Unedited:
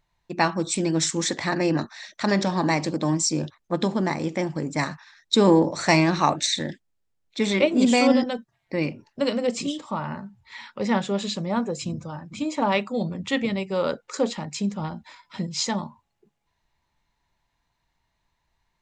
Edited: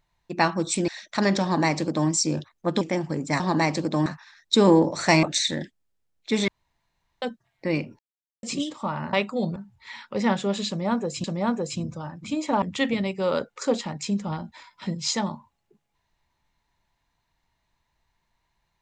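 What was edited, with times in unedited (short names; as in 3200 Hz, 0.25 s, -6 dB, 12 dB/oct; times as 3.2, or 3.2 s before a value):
0.88–1.94 cut
2.49–3.15 copy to 4.86
3.87–4.27 cut
6.03–6.31 cut
7.56–8.3 room tone
9.07–9.51 mute
11.33–11.89 loop, 2 plays
12.71–13.14 move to 10.21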